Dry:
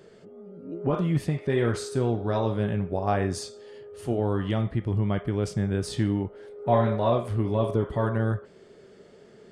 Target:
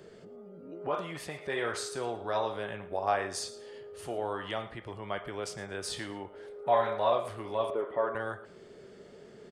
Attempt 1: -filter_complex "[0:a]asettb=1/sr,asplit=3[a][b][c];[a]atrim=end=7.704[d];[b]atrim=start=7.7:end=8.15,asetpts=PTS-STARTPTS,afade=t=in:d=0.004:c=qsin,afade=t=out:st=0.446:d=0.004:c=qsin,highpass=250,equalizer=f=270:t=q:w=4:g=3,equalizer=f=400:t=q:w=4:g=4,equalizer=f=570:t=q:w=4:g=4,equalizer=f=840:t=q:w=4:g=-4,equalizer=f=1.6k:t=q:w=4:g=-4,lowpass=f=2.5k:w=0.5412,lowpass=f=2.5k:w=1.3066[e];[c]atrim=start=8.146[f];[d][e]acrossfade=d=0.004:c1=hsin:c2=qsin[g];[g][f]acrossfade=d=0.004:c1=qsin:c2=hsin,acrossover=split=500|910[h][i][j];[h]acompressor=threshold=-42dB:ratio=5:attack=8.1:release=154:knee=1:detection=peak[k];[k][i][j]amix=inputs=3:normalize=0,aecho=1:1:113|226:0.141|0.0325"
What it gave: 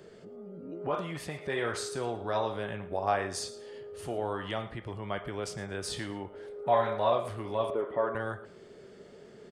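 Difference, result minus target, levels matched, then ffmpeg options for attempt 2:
compressor: peak gain reduction -5.5 dB
-filter_complex "[0:a]asettb=1/sr,asplit=3[a][b][c];[a]atrim=end=7.704[d];[b]atrim=start=7.7:end=8.15,asetpts=PTS-STARTPTS,afade=t=in:d=0.004:c=qsin,afade=t=out:st=0.446:d=0.004:c=qsin,highpass=250,equalizer=f=270:t=q:w=4:g=3,equalizer=f=400:t=q:w=4:g=4,equalizer=f=570:t=q:w=4:g=4,equalizer=f=840:t=q:w=4:g=-4,equalizer=f=1.6k:t=q:w=4:g=-4,lowpass=f=2.5k:w=0.5412,lowpass=f=2.5k:w=1.3066[e];[c]atrim=start=8.146[f];[d][e]acrossfade=d=0.004:c1=hsin:c2=qsin[g];[g][f]acrossfade=d=0.004:c1=qsin:c2=hsin,acrossover=split=500|910[h][i][j];[h]acompressor=threshold=-49dB:ratio=5:attack=8.1:release=154:knee=1:detection=peak[k];[k][i][j]amix=inputs=3:normalize=0,aecho=1:1:113|226:0.141|0.0325"

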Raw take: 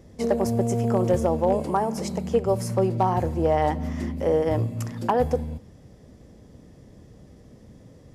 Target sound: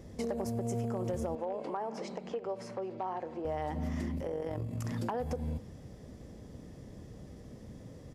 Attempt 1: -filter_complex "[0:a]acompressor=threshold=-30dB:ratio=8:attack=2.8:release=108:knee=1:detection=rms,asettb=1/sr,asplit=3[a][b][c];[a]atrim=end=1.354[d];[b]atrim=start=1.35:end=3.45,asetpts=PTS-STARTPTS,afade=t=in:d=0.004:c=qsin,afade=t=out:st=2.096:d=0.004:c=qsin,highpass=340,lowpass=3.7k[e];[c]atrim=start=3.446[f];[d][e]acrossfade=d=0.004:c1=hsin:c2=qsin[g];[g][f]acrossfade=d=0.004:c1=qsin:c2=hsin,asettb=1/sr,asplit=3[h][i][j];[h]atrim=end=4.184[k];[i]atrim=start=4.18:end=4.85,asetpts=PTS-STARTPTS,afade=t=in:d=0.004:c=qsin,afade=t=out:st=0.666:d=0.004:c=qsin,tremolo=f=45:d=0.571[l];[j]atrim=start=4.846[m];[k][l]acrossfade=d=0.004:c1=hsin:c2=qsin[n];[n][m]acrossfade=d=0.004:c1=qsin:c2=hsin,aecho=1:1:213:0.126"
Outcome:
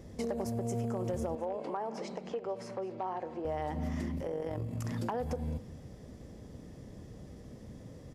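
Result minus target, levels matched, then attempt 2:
echo-to-direct +9.5 dB
-filter_complex "[0:a]acompressor=threshold=-30dB:ratio=8:attack=2.8:release=108:knee=1:detection=rms,asettb=1/sr,asplit=3[a][b][c];[a]atrim=end=1.354[d];[b]atrim=start=1.35:end=3.45,asetpts=PTS-STARTPTS,afade=t=in:d=0.004:c=qsin,afade=t=out:st=2.096:d=0.004:c=qsin,highpass=340,lowpass=3.7k[e];[c]atrim=start=3.446[f];[d][e]acrossfade=d=0.004:c1=hsin:c2=qsin[g];[g][f]acrossfade=d=0.004:c1=qsin:c2=hsin,asettb=1/sr,asplit=3[h][i][j];[h]atrim=end=4.184[k];[i]atrim=start=4.18:end=4.85,asetpts=PTS-STARTPTS,afade=t=in:d=0.004:c=qsin,afade=t=out:st=0.666:d=0.004:c=qsin,tremolo=f=45:d=0.571[l];[j]atrim=start=4.846[m];[k][l]acrossfade=d=0.004:c1=hsin:c2=qsin[n];[n][m]acrossfade=d=0.004:c1=qsin:c2=hsin,aecho=1:1:213:0.0422"

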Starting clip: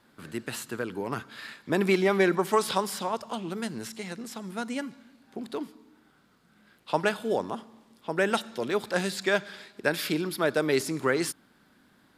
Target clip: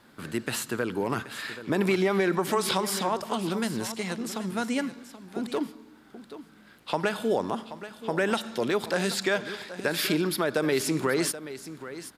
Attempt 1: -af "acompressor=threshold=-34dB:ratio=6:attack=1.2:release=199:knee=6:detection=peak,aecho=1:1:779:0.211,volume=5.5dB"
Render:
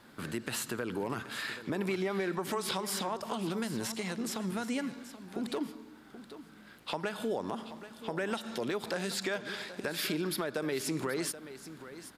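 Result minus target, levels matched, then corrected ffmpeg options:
compressor: peak gain reduction +9 dB
-af "acompressor=threshold=-23.5dB:ratio=6:attack=1.2:release=199:knee=6:detection=peak,aecho=1:1:779:0.211,volume=5.5dB"

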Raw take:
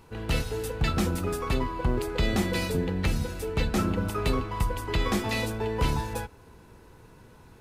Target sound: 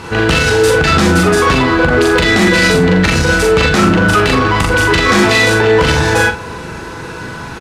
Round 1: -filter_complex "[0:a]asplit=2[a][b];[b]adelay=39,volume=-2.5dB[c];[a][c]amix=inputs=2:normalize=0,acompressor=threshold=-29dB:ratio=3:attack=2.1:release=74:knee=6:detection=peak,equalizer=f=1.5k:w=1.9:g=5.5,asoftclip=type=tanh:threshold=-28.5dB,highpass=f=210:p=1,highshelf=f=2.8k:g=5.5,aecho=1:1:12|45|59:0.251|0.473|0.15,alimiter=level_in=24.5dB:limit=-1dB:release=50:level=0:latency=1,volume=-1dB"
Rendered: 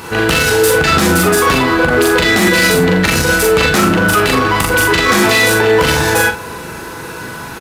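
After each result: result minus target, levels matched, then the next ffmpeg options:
8000 Hz band +4.5 dB; 125 Hz band -3.5 dB
-filter_complex "[0:a]asplit=2[a][b];[b]adelay=39,volume=-2.5dB[c];[a][c]amix=inputs=2:normalize=0,acompressor=threshold=-29dB:ratio=3:attack=2.1:release=74:knee=6:detection=peak,lowpass=6.7k,equalizer=f=1.5k:w=1.9:g=5.5,asoftclip=type=tanh:threshold=-28.5dB,highpass=f=210:p=1,highshelf=f=2.8k:g=5.5,aecho=1:1:12|45|59:0.251|0.473|0.15,alimiter=level_in=24.5dB:limit=-1dB:release=50:level=0:latency=1,volume=-1dB"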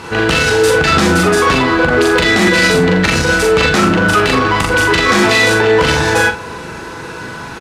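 125 Hz band -3.0 dB
-filter_complex "[0:a]asplit=2[a][b];[b]adelay=39,volume=-2.5dB[c];[a][c]amix=inputs=2:normalize=0,acompressor=threshold=-29dB:ratio=3:attack=2.1:release=74:knee=6:detection=peak,lowpass=6.7k,equalizer=f=1.5k:w=1.9:g=5.5,asoftclip=type=tanh:threshold=-28.5dB,highpass=f=92:p=1,highshelf=f=2.8k:g=5.5,aecho=1:1:12|45|59:0.251|0.473|0.15,alimiter=level_in=24.5dB:limit=-1dB:release=50:level=0:latency=1,volume=-1dB"

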